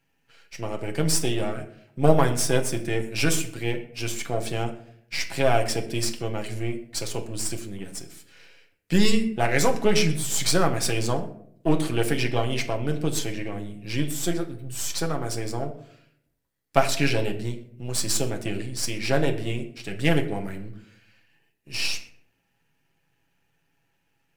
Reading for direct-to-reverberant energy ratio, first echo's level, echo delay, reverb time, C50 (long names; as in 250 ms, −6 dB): 3.0 dB, no echo audible, no echo audible, 0.70 s, 12.0 dB